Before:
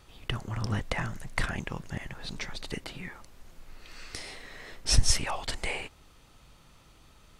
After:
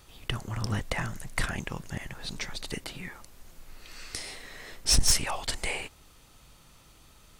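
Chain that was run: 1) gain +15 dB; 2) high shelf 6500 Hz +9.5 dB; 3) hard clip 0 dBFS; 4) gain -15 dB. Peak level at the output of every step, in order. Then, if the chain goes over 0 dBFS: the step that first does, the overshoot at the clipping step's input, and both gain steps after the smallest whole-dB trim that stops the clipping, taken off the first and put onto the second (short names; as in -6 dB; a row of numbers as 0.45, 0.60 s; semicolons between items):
+5.5, +8.0, 0.0, -15.0 dBFS; step 1, 8.0 dB; step 1 +7 dB, step 4 -7 dB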